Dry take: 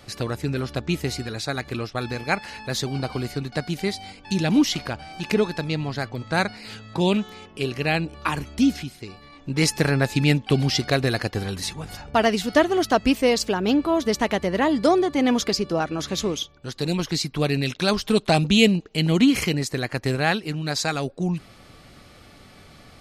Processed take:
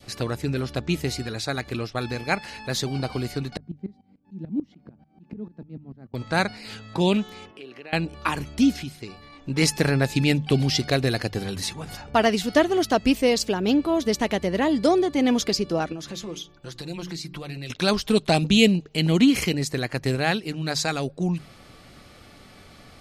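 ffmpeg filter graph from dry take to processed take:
-filter_complex "[0:a]asettb=1/sr,asplit=3[a][b][c];[a]atrim=end=3.574[d];[b]atrim=start=3.57:end=6.14,asetpts=PTS-STARTPTS,afade=t=in:d=0.004:c=qsin,afade=t=out:st=2.566:d=0.004:c=qsin,bandpass=f=210:t=q:w=2.3,aeval=exprs='val(0)*pow(10,-21*if(lt(mod(-6.8*n/s,1),2*abs(-6.8)/1000),1-mod(-6.8*n/s,1)/(2*abs(-6.8)/1000),(mod(-6.8*n/s,1)-2*abs(-6.8)/1000)/(1-2*abs(-6.8)/1000))/20)':c=same[e];[c]atrim=start=6.136[f];[d][e]acrossfade=d=0.004:c1=hsin:c2=qsin[g];[g][f]acrossfade=d=0.004:c1=qsin:c2=hsin,asettb=1/sr,asplit=3[h][i][j];[h]atrim=end=7.514[k];[i]atrim=start=7.51:end=7.93,asetpts=PTS-STARTPTS,afade=t=in:d=0.004:c=qsin,afade=t=out:st=0.416:d=0.004:c=qsin,acrossover=split=210 3900:gain=0.0891 1 0.2[l][m][n];[l][m][n]amix=inputs=3:normalize=0,acompressor=threshold=-42dB:ratio=3:attack=3.2:release=140:knee=1:detection=peak[o];[j]atrim=start=7.926[p];[k][o]acrossfade=d=0.004:c1=hsin:c2=qsin[q];[q][p]acrossfade=d=0.004:c1=qsin:c2=hsin,asettb=1/sr,asplit=3[r][s][t];[r]atrim=end=15.924[u];[s]atrim=start=15.92:end=17.7,asetpts=PTS-STARTPTS,afade=t=in:d=0.004:c=qsin,afade=t=out:st=1.776:d=0.004:c=qsin,bandreject=f=60:t=h:w=6,bandreject=f=120:t=h:w=6,bandreject=f=180:t=h:w=6,bandreject=f=240:t=h:w=6,bandreject=f=300:t=h:w=6,bandreject=f=360:t=h:w=6,bandreject=f=420:t=h:w=6,acompressor=threshold=-35dB:ratio=3:attack=3.2:release=140:knee=1:detection=peak,aecho=1:1:5.8:0.51,atrim=end_sample=78498[v];[t]atrim=start=17.696[w];[u][v]acrossfade=d=0.004:c1=hsin:c2=qsin[x];[x][w]acrossfade=d=0.004:c1=qsin:c2=hsin,bandreject=f=50:t=h:w=6,bandreject=f=100:t=h:w=6,bandreject=f=150:t=h:w=6,adynamicequalizer=threshold=0.0126:dfrequency=1200:dqfactor=1:tfrequency=1200:tqfactor=1:attack=5:release=100:ratio=0.375:range=2.5:mode=cutabove:tftype=bell"

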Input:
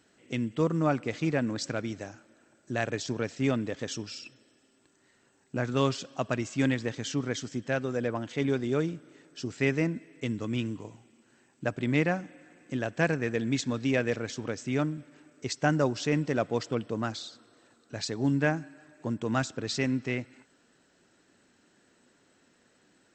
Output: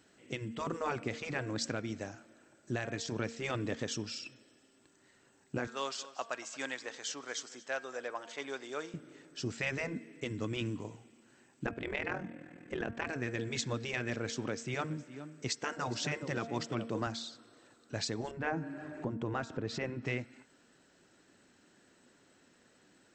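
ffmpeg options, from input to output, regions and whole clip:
-filter_complex "[0:a]asettb=1/sr,asplit=3[a][b][c];[a]atrim=end=5.674[d];[b]atrim=start=5.67:end=8.94,asetpts=PTS-STARTPTS,afade=t=in:d=0.004:c=qsin,afade=t=out:st=3.266:d=0.004:c=qsin,highpass=820,equalizer=f=2.4k:t=o:w=1.4:g=-5,aecho=1:1:229:0.119,atrim=end_sample=144207[e];[c]atrim=start=8.936[f];[d][e]acrossfade=d=0.004:c1=hsin:c2=qsin[g];[g][f]acrossfade=d=0.004:c1=qsin:c2=hsin,asettb=1/sr,asplit=3[h][i][j];[h]atrim=end=11.664[k];[i]atrim=start=11.66:end=13.09,asetpts=PTS-STARTPTS,afade=t=in:d=0.004:c=qsin,afade=t=out:st=1.426:d=0.004:c=qsin,bass=f=250:g=8,treble=f=4k:g=-12,acontrast=35,tremolo=f=41:d=0.788[l];[j]atrim=start=13.086[m];[k][l]acrossfade=d=0.004:c1=hsin:c2=qsin[n];[n][m]acrossfade=d=0.004:c1=qsin:c2=hsin,asettb=1/sr,asplit=3[o][p][q];[o]atrim=end=14.334[r];[p]atrim=start=14.33:end=17.07,asetpts=PTS-STARTPTS,afade=t=in:d=0.004:c=qsin,afade=t=out:st=2.736:d=0.004:c=qsin,highpass=110,aecho=1:1:413:0.119,atrim=end_sample=120834[s];[q]atrim=start=17.066[t];[r][s]acrossfade=d=0.004:c1=hsin:c2=qsin[u];[u][t]acrossfade=d=0.004:c1=qsin:c2=hsin,asettb=1/sr,asplit=3[v][w][x];[v]atrim=end=18.314[y];[w]atrim=start=18.31:end=20.06,asetpts=PTS-STARTPTS,afade=t=in:d=0.004:c=qsin,afade=t=out:st=1.746:d=0.004:c=qsin,lowpass=f=1.1k:p=1,acompressor=mode=upward:threshold=-31dB:ratio=2.5:attack=3.2:release=140:knee=2.83:detection=peak[z];[x]atrim=start=20.056[aa];[y][z]acrossfade=d=0.004:c1=hsin:c2=qsin[ab];[ab][aa]acrossfade=d=0.004:c1=qsin:c2=hsin,bandreject=f=230.2:t=h:w=4,bandreject=f=460.4:t=h:w=4,bandreject=f=690.6:t=h:w=4,bandreject=f=920.8:t=h:w=4,bandreject=f=1.151k:t=h:w=4,bandreject=f=1.3812k:t=h:w=4,bandreject=f=1.6114k:t=h:w=4,bandreject=f=1.8416k:t=h:w=4,bandreject=f=2.0718k:t=h:w=4,bandreject=f=2.302k:t=h:w=4,bandreject=f=2.5322k:t=h:w=4,afftfilt=real='re*lt(hypot(re,im),0.224)':imag='im*lt(hypot(re,im),0.224)':win_size=1024:overlap=0.75,alimiter=limit=-22.5dB:level=0:latency=1:release=425"

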